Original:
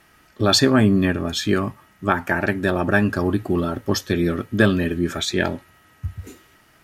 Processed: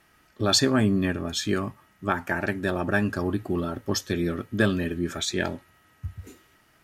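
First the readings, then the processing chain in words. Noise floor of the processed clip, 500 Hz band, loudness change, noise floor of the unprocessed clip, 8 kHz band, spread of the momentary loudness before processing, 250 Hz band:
-62 dBFS, -6.0 dB, -5.5 dB, -56 dBFS, -1.5 dB, 14 LU, -6.0 dB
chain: dynamic bell 7.1 kHz, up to +5 dB, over -41 dBFS, Q 1.1; trim -6 dB

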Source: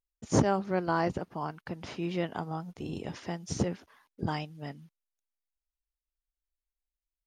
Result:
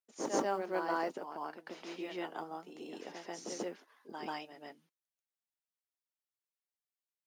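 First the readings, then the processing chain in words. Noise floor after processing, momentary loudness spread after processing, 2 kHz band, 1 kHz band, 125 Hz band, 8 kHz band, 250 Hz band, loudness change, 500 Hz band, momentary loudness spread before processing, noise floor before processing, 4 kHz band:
under -85 dBFS, 15 LU, -4.5 dB, -4.5 dB, -24.0 dB, -4.5 dB, -9.5 dB, -6.5 dB, -5.0 dB, 14 LU, under -85 dBFS, -4.5 dB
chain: high-pass 290 Hz 24 dB/octave; flange 1 Hz, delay 3.8 ms, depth 2.4 ms, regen -68%; modulation noise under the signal 35 dB; on a send: reverse echo 138 ms -5 dB; on the sum: trim -1.5 dB

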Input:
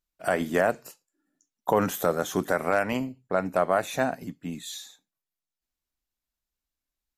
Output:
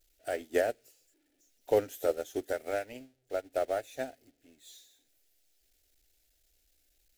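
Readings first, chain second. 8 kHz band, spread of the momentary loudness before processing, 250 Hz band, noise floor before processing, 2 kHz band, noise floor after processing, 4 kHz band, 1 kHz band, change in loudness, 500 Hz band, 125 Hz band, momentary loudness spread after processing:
-10.0 dB, 12 LU, -12.5 dB, under -85 dBFS, -11.5 dB, -74 dBFS, -10.0 dB, -12.0 dB, -6.5 dB, -5.0 dB, -16.5 dB, 16 LU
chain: jump at every zero crossing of -32.5 dBFS; static phaser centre 440 Hz, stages 4; upward expansion 2.5:1, over -42 dBFS

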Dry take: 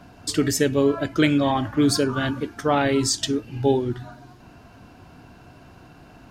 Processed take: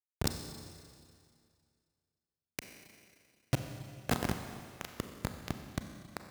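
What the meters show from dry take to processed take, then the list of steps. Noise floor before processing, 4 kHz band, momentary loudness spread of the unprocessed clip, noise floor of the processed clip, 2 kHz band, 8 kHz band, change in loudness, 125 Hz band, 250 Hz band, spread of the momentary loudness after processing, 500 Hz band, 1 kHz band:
-49 dBFS, -16.5 dB, 7 LU, under -85 dBFS, -15.0 dB, -16.5 dB, -17.5 dB, -12.0 dB, -20.0 dB, 18 LU, -22.0 dB, -17.0 dB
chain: square wave that keeps the level; peaking EQ 1.1 kHz -11 dB 0.88 oct; inverted gate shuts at -25 dBFS, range -34 dB; bit crusher 6-bit; high-pass 64 Hz 12 dB/octave; peak limiter -27 dBFS, peak gain reduction 6 dB; Schroeder reverb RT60 2.2 s, combs from 30 ms, DRR 6 dB; trim +10 dB

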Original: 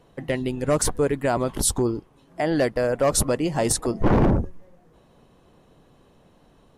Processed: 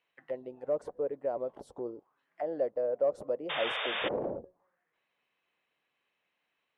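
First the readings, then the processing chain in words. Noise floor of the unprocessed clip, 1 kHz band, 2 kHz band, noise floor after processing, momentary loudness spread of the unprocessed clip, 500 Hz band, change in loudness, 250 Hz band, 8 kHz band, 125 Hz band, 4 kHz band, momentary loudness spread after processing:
-57 dBFS, -12.0 dB, -6.5 dB, -82 dBFS, 7 LU, -8.5 dB, -11.0 dB, -19.5 dB, under -40 dB, -29.0 dB, -5.0 dB, 11 LU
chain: auto-wah 540–2400 Hz, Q 3.7, down, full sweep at -21.5 dBFS; painted sound noise, 3.49–4.09 s, 430–3700 Hz -29 dBFS; trim -5.5 dB

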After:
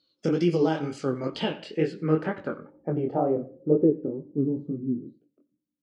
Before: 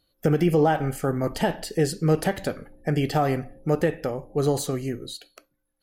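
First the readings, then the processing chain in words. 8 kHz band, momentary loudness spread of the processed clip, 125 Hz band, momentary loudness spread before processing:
under -15 dB, 9 LU, -6.0 dB, 11 LU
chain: chorus 2.1 Hz, delay 17.5 ms, depth 7.8 ms; cabinet simulation 170–9300 Hz, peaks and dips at 310 Hz +4 dB, 730 Hz -10 dB, 1.8 kHz -9 dB; on a send: feedback delay 90 ms, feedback 33%, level -21.5 dB; on the sum: low-pass sweep 5.1 kHz -> 230 Hz, 0.93–4.50 s

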